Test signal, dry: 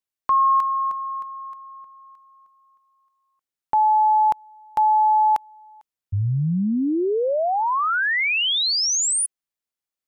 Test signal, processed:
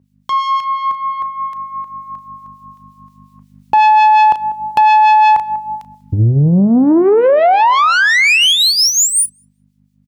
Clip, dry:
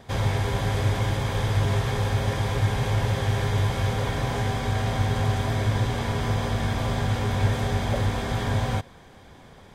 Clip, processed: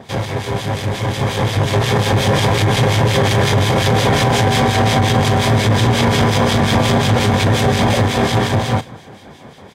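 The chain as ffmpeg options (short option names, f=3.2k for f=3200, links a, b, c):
-filter_complex "[0:a]acompressor=threshold=-21dB:ratio=2.5:release=982:knee=6:detection=rms,highshelf=f=8.4k:g=-4,aeval=exprs='val(0)+0.00112*(sin(2*PI*50*n/s)+sin(2*PI*2*50*n/s)/2+sin(2*PI*3*50*n/s)/3+sin(2*PI*4*50*n/s)/4+sin(2*PI*5*50*n/s)/5)':c=same,aeval=exprs='(tanh(14.1*val(0)+0.3)-tanh(0.3))/14.1':c=same,highpass=120,asplit=2[a][b];[b]adelay=35,volume=-13.5dB[c];[a][c]amix=inputs=2:normalize=0,dynaudnorm=f=220:g=17:m=12dB,acrossover=split=2000[d][e];[d]aeval=exprs='val(0)*(1-0.7/2+0.7/2*cos(2*PI*5.6*n/s))':c=same[f];[e]aeval=exprs='val(0)*(1-0.7/2-0.7/2*cos(2*PI*5.6*n/s))':c=same[g];[f][g]amix=inputs=2:normalize=0,equalizer=f=1.4k:t=o:w=0.74:g=-3.5,asplit=2[h][i];[i]adelay=194,lowpass=f=1.1k:p=1,volume=-21.5dB,asplit=2[j][k];[k]adelay=194,lowpass=f=1.1k:p=1,volume=0.38,asplit=2[l][m];[m]adelay=194,lowpass=f=1.1k:p=1,volume=0.38[n];[j][l][n]amix=inputs=3:normalize=0[o];[h][o]amix=inputs=2:normalize=0,alimiter=level_in=18.5dB:limit=-1dB:release=50:level=0:latency=1,volume=-4dB"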